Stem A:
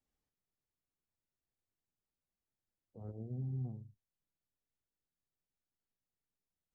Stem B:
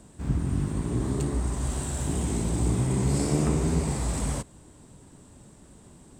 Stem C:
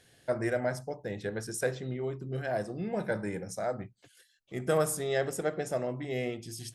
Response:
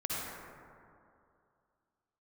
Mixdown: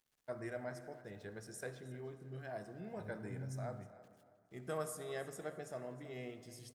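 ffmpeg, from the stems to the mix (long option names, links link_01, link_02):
-filter_complex "[0:a]volume=-5.5dB[link_01];[2:a]equalizer=frequency=1100:width_type=o:width=0.41:gain=4,bandreject=frequency=520:width=14,aeval=exprs='val(0)*gte(abs(val(0)),0.00178)':channel_layout=same,volume=-14.5dB,asplit=3[link_02][link_03][link_04];[link_03]volume=-15.5dB[link_05];[link_04]volume=-16.5dB[link_06];[3:a]atrim=start_sample=2205[link_07];[link_05][link_07]afir=irnorm=-1:irlink=0[link_08];[link_06]aecho=0:1:313|626|939|1252:1|0.26|0.0676|0.0176[link_09];[link_01][link_02][link_08][link_09]amix=inputs=4:normalize=0"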